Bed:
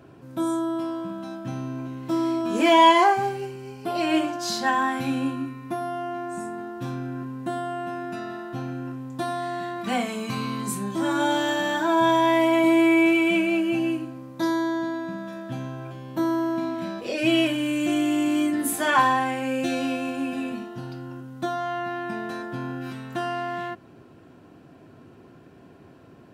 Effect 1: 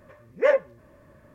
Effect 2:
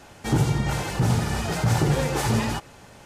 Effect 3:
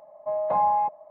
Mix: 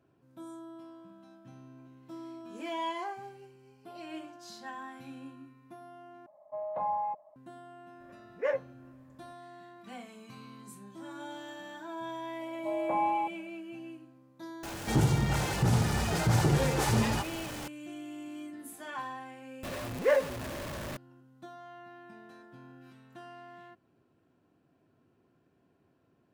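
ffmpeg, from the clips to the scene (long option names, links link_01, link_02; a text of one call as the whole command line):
ffmpeg -i bed.wav -i cue0.wav -i cue1.wav -i cue2.wav -filter_complex "[3:a]asplit=2[link_01][link_02];[1:a]asplit=2[link_03][link_04];[0:a]volume=-20dB[link_05];[link_02]equalizer=frequency=300:width=1.5:gain=7.5[link_06];[2:a]aeval=exprs='val(0)+0.5*0.0237*sgn(val(0))':channel_layout=same[link_07];[link_04]aeval=exprs='val(0)+0.5*0.0447*sgn(val(0))':channel_layout=same[link_08];[link_05]asplit=2[link_09][link_10];[link_09]atrim=end=6.264[link_11];[link_01]atrim=end=1.1,asetpts=PTS-STARTPTS,volume=-10dB[link_12];[link_10]atrim=start=7.356[link_13];[link_03]atrim=end=1.34,asetpts=PTS-STARTPTS,volume=-10.5dB,afade=type=in:duration=0.004:curve=hsin,afade=type=out:start_time=1.336:duration=0.004:curve=hsin,adelay=8000[link_14];[link_06]atrim=end=1.1,asetpts=PTS-STARTPTS,volume=-8dB,afade=type=in:duration=0.004:curve=hsin,afade=type=out:start_time=1.096:duration=0.004:curve=hsin,adelay=12390[link_15];[link_07]atrim=end=3.05,asetpts=PTS-STARTPTS,volume=-5dB,afade=type=in:duration=0.004:curve=hsin,afade=type=out:start_time=3.046:duration=0.004:curve=hsin,adelay=14630[link_16];[link_08]atrim=end=1.34,asetpts=PTS-STARTPTS,volume=-6.5dB,afade=type=in:duration=0.004:curve=hsin,afade=type=out:start_time=1.336:duration=0.004:curve=hsin,adelay=19630[link_17];[link_11][link_12]acrossfade=duration=0.004:curve1=hsin:curve2=hsin[link_18];[link_18][link_13]acrossfade=duration=0.004:curve1=hsin:curve2=hsin[link_19];[link_19][link_14][link_15][link_16][link_17]amix=inputs=5:normalize=0" out.wav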